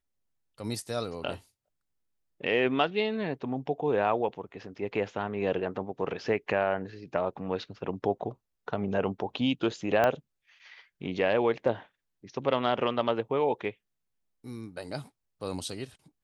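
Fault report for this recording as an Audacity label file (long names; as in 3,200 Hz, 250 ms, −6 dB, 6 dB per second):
10.040000	10.040000	click −13 dBFS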